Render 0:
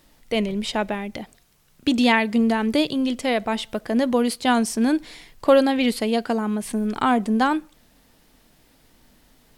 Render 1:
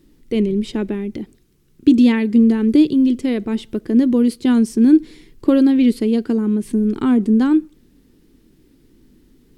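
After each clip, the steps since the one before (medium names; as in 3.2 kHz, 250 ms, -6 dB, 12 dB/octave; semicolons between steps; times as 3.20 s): resonant low shelf 490 Hz +10.5 dB, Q 3; trim -6 dB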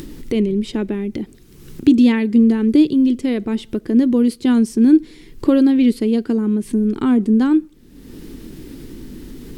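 upward compressor, threshold -18 dBFS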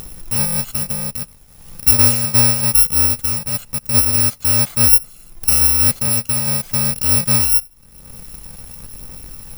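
bit-reversed sample order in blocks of 128 samples; phaser 0.99 Hz, delay 1.5 ms, feedback 21%; trim -1 dB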